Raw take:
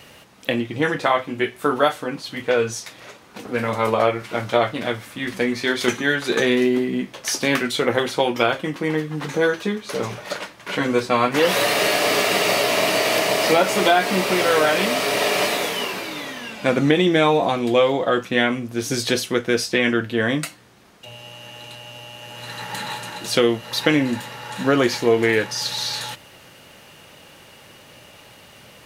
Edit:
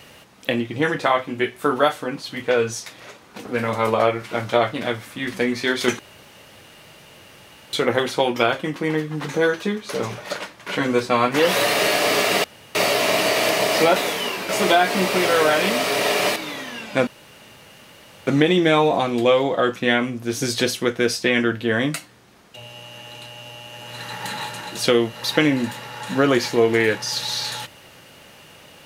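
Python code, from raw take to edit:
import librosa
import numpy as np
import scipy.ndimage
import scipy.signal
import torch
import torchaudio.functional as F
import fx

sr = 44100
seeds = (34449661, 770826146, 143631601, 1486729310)

y = fx.edit(x, sr, fx.room_tone_fill(start_s=5.99, length_s=1.74),
    fx.insert_room_tone(at_s=12.44, length_s=0.31),
    fx.move(start_s=15.52, length_s=0.53, to_s=13.65),
    fx.insert_room_tone(at_s=16.76, length_s=1.2), tone=tone)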